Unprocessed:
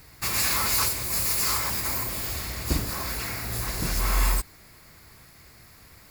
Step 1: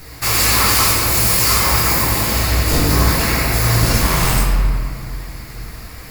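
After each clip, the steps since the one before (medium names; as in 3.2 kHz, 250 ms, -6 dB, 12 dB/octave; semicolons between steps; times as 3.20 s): sine folder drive 11 dB, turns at -9.5 dBFS; reverberation RT60 2.2 s, pre-delay 6 ms, DRR -5 dB; trim -5 dB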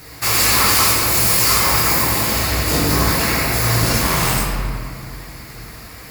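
high-pass 110 Hz 6 dB/octave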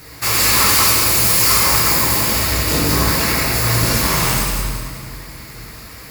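band-stop 730 Hz, Q 12; feedback echo behind a high-pass 188 ms, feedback 45%, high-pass 3.1 kHz, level -4 dB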